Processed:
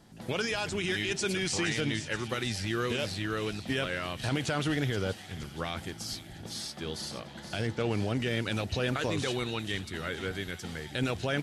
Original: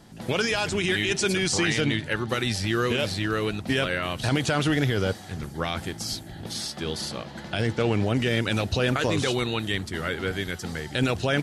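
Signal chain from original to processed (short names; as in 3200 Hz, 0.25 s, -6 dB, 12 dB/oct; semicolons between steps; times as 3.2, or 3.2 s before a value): thin delay 0.474 s, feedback 60%, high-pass 2600 Hz, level -10 dB; gain -6.5 dB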